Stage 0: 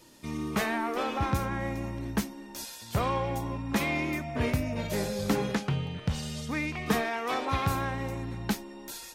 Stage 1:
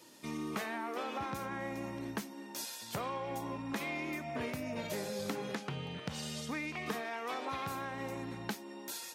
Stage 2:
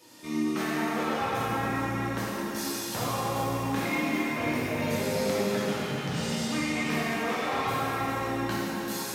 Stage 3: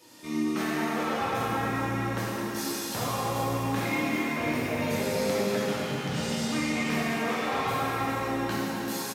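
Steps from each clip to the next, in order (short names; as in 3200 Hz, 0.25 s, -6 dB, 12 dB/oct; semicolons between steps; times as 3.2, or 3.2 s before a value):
Bessel high-pass 220 Hz, order 2; compressor, threshold -34 dBFS, peak gain reduction 11 dB; gain -1 dB
plate-style reverb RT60 4.2 s, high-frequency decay 0.8×, DRR -9.5 dB
feedback echo 0.249 s, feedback 54%, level -13 dB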